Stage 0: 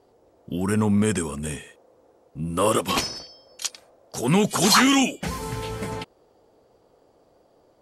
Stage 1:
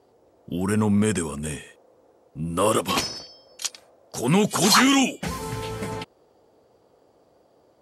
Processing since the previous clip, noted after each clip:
high-pass filter 58 Hz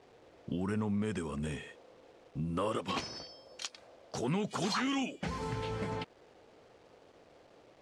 downward compressor 3 to 1, threshold −33 dBFS, peak gain reduction 15 dB
bit reduction 10 bits
high-frequency loss of the air 100 metres
level −1 dB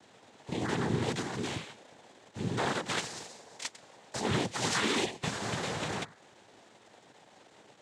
compressing power law on the bin magnitudes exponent 0.64
hum removal 150.1 Hz, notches 7
cochlear-implant simulation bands 6
level +3 dB

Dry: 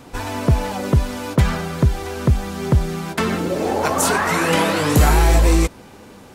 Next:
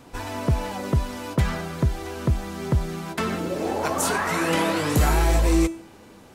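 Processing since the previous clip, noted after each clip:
tuned comb filter 330 Hz, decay 0.47 s, harmonics all, mix 60%
level +1.5 dB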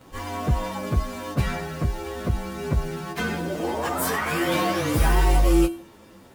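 partials spread apart or drawn together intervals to 108%
level +2 dB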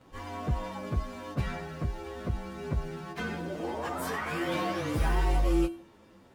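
high-shelf EQ 7,600 Hz −11 dB
level −7.5 dB

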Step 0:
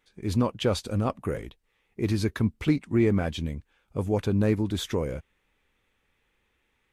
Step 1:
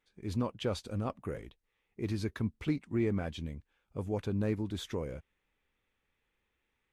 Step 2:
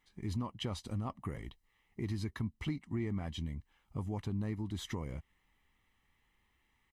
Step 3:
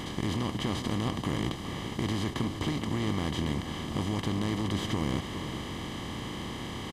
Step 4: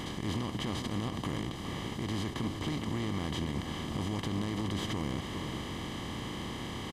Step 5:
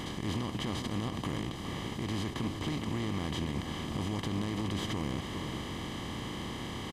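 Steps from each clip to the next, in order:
high-shelf EQ 8,800 Hz −5 dB; level −8.5 dB
comb filter 1 ms, depth 58%; downward compressor 2.5 to 1, threshold −42 dBFS, peak gain reduction 11.5 dB; level +4 dB
compressor on every frequency bin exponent 0.2; slap from a distant wall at 71 metres, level −9 dB
brickwall limiter −22.5 dBFS, peak gain reduction 6 dB; level −1.5 dB
loose part that buzzes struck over −34 dBFS, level −44 dBFS

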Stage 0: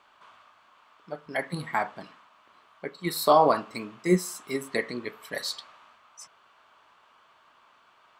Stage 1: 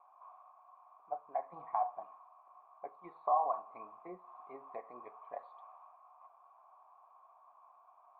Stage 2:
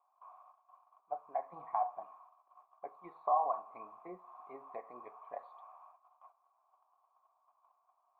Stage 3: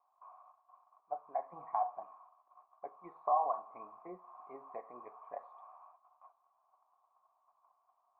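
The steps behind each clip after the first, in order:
parametric band 160 Hz −10.5 dB 1.8 octaves; downward compressor 4 to 1, threshold −31 dBFS, peak gain reduction 13.5 dB; formant resonators in series a; level +9 dB
noise gate −59 dBFS, range −13 dB
low-pass filter 2,000 Hz 12 dB per octave

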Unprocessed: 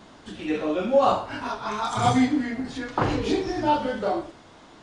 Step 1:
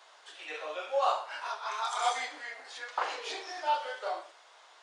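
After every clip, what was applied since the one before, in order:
Bessel high-pass filter 860 Hz, order 8
level −3.5 dB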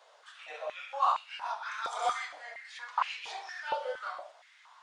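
high-pass on a step sequencer 4.3 Hz 510–2,500 Hz
level −6 dB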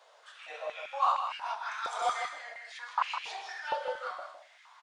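single-tap delay 158 ms −8 dB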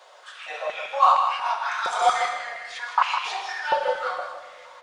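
convolution reverb RT60 1.9 s, pre-delay 5 ms, DRR 6.5 dB
level +9 dB

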